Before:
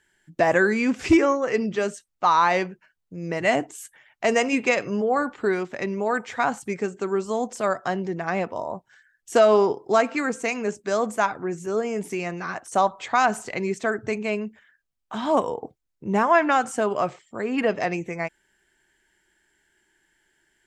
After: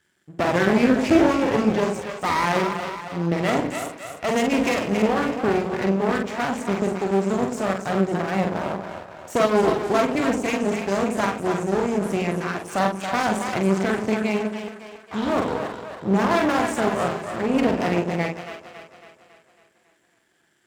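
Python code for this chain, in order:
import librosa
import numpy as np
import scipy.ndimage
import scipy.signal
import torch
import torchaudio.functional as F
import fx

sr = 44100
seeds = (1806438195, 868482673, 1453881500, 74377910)

p1 = 10.0 ** (-21.0 / 20.0) * (np.abs((x / 10.0 ** (-21.0 / 20.0) + 3.0) % 4.0 - 2.0) - 1.0)
p2 = x + F.gain(torch.from_numpy(p1), -5.0).numpy()
p3 = fx.peak_eq(p2, sr, hz=190.0, db=8.5, octaves=2.3)
p4 = fx.doubler(p3, sr, ms=46.0, db=-4.5)
p5 = p4 + fx.echo_split(p4, sr, split_hz=460.0, low_ms=93, high_ms=276, feedback_pct=52, wet_db=-6.5, dry=0)
p6 = np.maximum(p5, 0.0)
p7 = scipy.signal.sosfilt(scipy.signal.butter(2, 89.0, 'highpass', fs=sr, output='sos'), p6)
y = F.gain(torch.from_numpy(p7), -2.0).numpy()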